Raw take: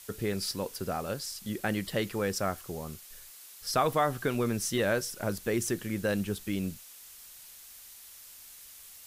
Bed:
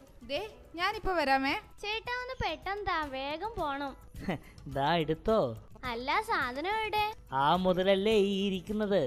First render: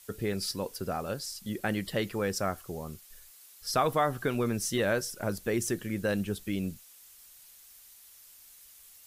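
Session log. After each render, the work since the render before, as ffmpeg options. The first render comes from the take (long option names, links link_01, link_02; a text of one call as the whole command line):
ffmpeg -i in.wav -af "afftdn=noise_reduction=6:noise_floor=-51" out.wav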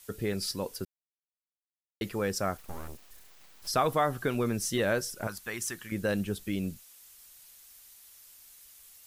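ffmpeg -i in.wav -filter_complex "[0:a]asplit=3[link_01][link_02][link_03];[link_01]afade=type=out:start_time=2.57:duration=0.02[link_04];[link_02]aeval=exprs='abs(val(0))':channel_layout=same,afade=type=in:start_time=2.57:duration=0.02,afade=type=out:start_time=3.66:duration=0.02[link_05];[link_03]afade=type=in:start_time=3.66:duration=0.02[link_06];[link_04][link_05][link_06]amix=inputs=3:normalize=0,asettb=1/sr,asplit=3[link_07][link_08][link_09];[link_07]atrim=end=5.274[link_10];[link_08]atrim=start=5.27:end=5.92,asetpts=PTS-STARTPTS,afade=type=in:duration=0.004:curve=qsin,afade=type=out:start_time=0.646:duration=0.004:curve=qsin,lowshelf=frequency=710:width_type=q:width=1.5:gain=-10.5[link_11];[link_09]atrim=start=5.916[link_12];[link_10][link_11]acrossfade=duration=0.004:curve1=hsin:curve2=qsin[link_13];[link_13][link_12]acrossfade=duration=0.004:curve1=qsin:curve2=hsin,asplit=3[link_14][link_15][link_16];[link_14]atrim=end=0.85,asetpts=PTS-STARTPTS,afade=type=out:start_time=0.846:duration=0.004:curve=hsin[link_17];[link_15]atrim=start=0.85:end=2.01,asetpts=PTS-STARTPTS,volume=0[link_18];[link_16]atrim=start=2.01,asetpts=PTS-STARTPTS,afade=type=in:duration=0.004:curve=hsin[link_19];[link_17][link_18][link_19]concat=n=3:v=0:a=1" out.wav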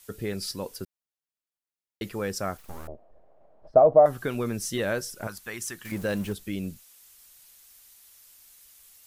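ffmpeg -i in.wav -filter_complex "[0:a]asettb=1/sr,asplit=3[link_01][link_02][link_03];[link_01]atrim=end=2.874[link_04];[link_02]atrim=start=2.87:end=4.06,asetpts=PTS-STARTPTS,afade=type=in:duration=0.004:curve=qsin,afade=type=out:start_time=1.186:duration=0.004:curve=qsin,lowpass=frequency=630:width_type=q:width=7.1[link_05];[link_03]atrim=start=4.056[link_06];[link_04][link_05]acrossfade=duration=0.004:curve1=hsin:curve2=qsin[link_07];[link_07][link_06]acrossfade=duration=0.004:curve1=qsin:curve2=hsin,asettb=1/sr,asplit=3[link_08][link_09][link_10];[link_08]atrim=end=5.854[link_11];[link_09]atrim=start=5.85:end=6.33,asetpts=PTS-STARTPTS,afade=type=in:duration=0.004:curve=qsin,afade=type=out:start_time=0.476:duration=0.004:curve=qsin,aeval=exprs='val(0)+0.5*0.0119*sgn(val(0))':channel_layout=same[link_12];[link_10]atrim=start=6.326[link_13];[link_11][link_12]acrossfade=duration=0.004:curve1=hsin:curve2=qsin[link_14];[link_14][link_13]acrossfade=duration=0.004:curve1=qsin:curve2=hsin" out.wav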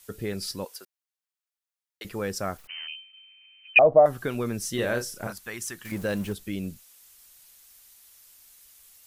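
ffmpeg -i in.wav -filter_complex "[0:a]asettb=1/sr,asplit=3[link_01][link_02][link_03];[link_01]atrim=end=0.654[link_04];[link_02]atrim=start=0.65:end=2.05,asetpts=PTS-STARTPTS,afade=type=in:duration=0.004:curve=qsin,afade=type=out:start_time=1.396:duration=0.004:curve=qsin,highpass=740[link_05];[link_03]atrim=start=2.046[link_06];[link_04][link_05]acrossfade=duration=0.004:curve1=hsin:curve2=qsin[link_07];[link_07][link_06]acrossfade=duration=0.004:curve1=qsin:curve2=hsin,asettb=1/sr,asplit=3[link_08][link_09][link_10];[link_08]atrim=end=2.674[link_11];[link_09]atrim=start=2.67:end=3.79,asetpts=PTS-STARTPTS,afade=type=in:duration=0.004:curve=qsin,afade=type=out:start_time=1.116:duration=0.004:curve=qsin,lowpass=frequency=2600:width_type=q:width=0.5098,lowpass=frequency=2600:width_type=q:width=0.6013,lowpass=frequency=2600:width_type=q:width=0.9,lowpass=frequency=2600:width_type=q:width=2.563,afreqshift=-3100[link_12];[link_10]atrim=start=3.786[link_13];[link_11][link_12]acrossfade=duration=0.004:curve1=hsin:curve2=qsin[link_14];[link_14][link_13]acrossfade=duration=0.004:curve1=qsin:curve2=hsin,asettb=1/sr,asplit=3[link_15][link_16][link_17];[link_15]atrim=end=4.754[link_18];[link_16]atrim=start=4.75:end=5.33,asetpts=PTS-STARTPTS,afade=type=in:duration=0.004:curve=qsin,afade=type=out:start_time=0.576:duration=0.004:curve=qsin,asplit=2[link_19][link_20];[link_20]adelay=33,volume=-6dB[link_21];[link_19][link_21]amix=inputs=2:normalize=0,atrim=end_sample=25578[link_22];[link_17]atrim=start=5.326[link_23];[link_18][link_22]acrossfade=duration=0.004:curve1=hsin:curve2=qsin[link_24];[link_24][link_23]acrossfade=duration=0.004:curve1=qsin:curve2=hsin" out.wav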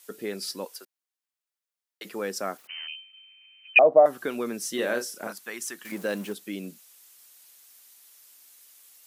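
ffmpeg -i in.wav -af "highpass=frequency=220:width=0.5412,highpass=frequency=220:width=1.3066" out.wav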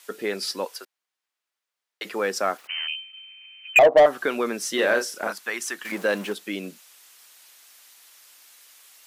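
ffmpeg -i in.wav -filter_complex "[0:a]asplit=2[link_01][link_02];[link_02]highpass=frequency=720:poles=1,volume=16dB,asoftclip=type=tanh:threshold=-5.5dB[link_03];[link_01][link_03]amix=inputs=2:normalize=0,lowpass=frequency=3000:poles=1,volume=-6dB,asoftclip=type=hard:threshold=-9dB" out.wav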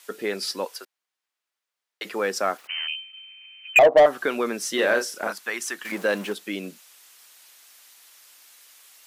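ffmpeg -i in.wav -af anull out.wav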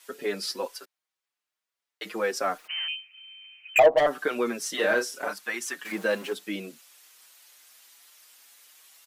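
ffmpeg -i in.wav -filter_complex "[0:a]asplit=2[link_01][link_02];[link_02]adelay=5.8,afreqshift=1.8[link_03];[link_01][link_03]amix=inputs=2:normalize=1" out.wav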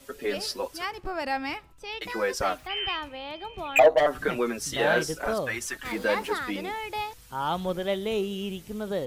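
ffmpeg -i in.wav -i bed.wav -filter_complex "[1:a]volume=-2dB[link_01];[0:a][link_01]amix=inputs=2:normalize=0" out.wav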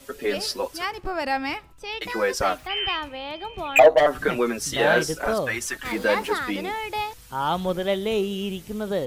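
ffmpeg -i in.wav -af "volume=4dB" out.wav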